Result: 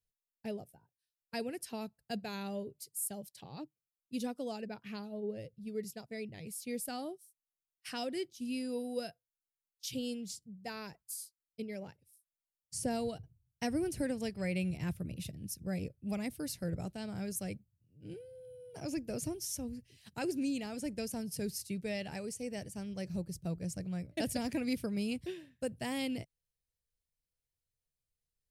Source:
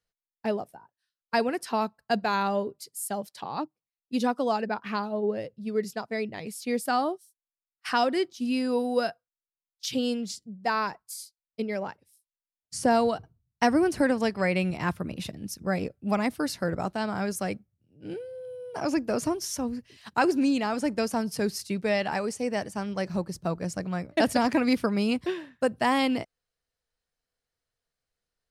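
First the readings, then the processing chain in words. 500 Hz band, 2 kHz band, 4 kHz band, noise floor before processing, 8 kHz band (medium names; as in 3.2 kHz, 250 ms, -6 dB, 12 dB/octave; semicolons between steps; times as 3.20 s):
-12.5 dB, -14.5 dB, -9.5 dB, under -85 dBFS, -4.0 dB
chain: FFT filter 140 Hz 0 dB, 220 Hz -9 dB, 540 Hz -11 dB, 1.1 kHz -23 dB, 2.4 kHz -9 dB, 4.4 kHz -9 dB, 11 kHz 0 dB; trim -1 dB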